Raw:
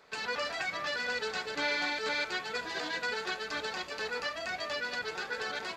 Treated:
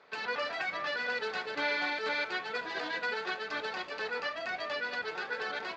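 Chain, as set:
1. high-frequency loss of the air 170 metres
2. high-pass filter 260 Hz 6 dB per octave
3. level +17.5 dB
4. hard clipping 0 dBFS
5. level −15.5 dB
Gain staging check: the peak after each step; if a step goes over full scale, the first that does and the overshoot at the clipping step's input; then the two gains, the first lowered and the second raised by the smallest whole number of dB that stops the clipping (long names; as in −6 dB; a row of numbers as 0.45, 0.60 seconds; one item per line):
−23.0, −23.0, −5.5, −5.5, −21.0 dBFS
no step passes full scale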